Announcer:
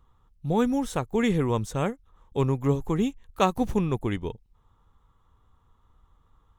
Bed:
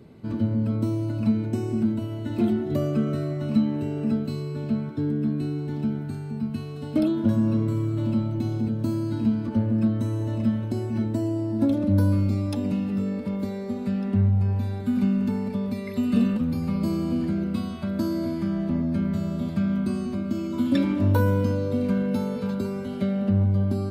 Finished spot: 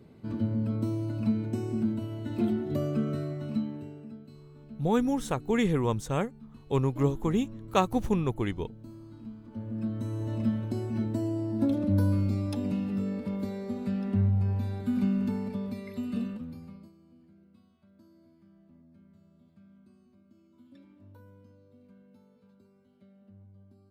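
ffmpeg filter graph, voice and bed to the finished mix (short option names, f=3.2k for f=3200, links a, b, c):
-filter_complex "[0:a]adelay=4350,volume=-2dB[a];[1:a]volume=11dB,afade=t=out:st=3.15:d=0.94:silence=0.16788,afade=t=in:st=9.45:d=0.93:silence=0.158489,afade=t=out:st=15.24:d=1.68:silence=0.0375837[b];[a][b]amix=inputs=2:normalize=0"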